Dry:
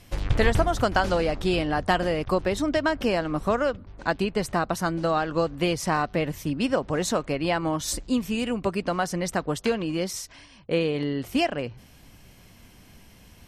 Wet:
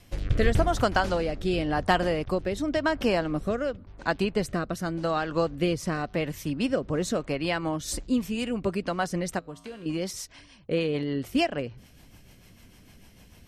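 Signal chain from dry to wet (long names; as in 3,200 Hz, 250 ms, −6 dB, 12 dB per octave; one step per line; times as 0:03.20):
rotating-speaker cabinet horn 0.9 Hz, later 6.7 Hz, at 0:07.56
0:09.39–0:09.86: tuned comb filter 56 Hz, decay 1.1 s, harmonics odd, mix 80%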